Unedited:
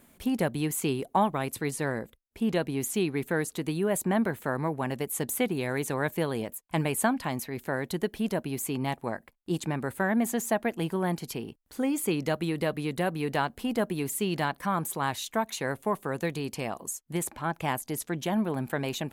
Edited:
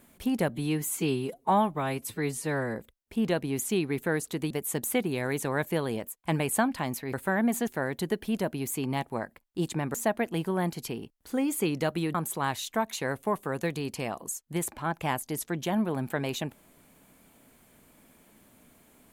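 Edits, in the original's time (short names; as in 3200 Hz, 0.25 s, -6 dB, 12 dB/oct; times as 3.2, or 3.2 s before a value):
0.49–2 stretch 1.5×
3.75–4.96 cut
9.86–10.4 move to 7.59
12.6–14.74 cut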